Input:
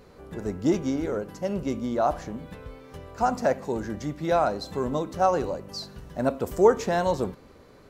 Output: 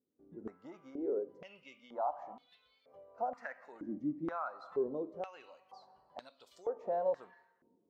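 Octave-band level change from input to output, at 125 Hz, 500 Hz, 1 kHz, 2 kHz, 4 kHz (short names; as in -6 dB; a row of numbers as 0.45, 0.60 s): -23.5 dB, -13.5 dB, -14.0 dB, -14.5 dB, under -20 dB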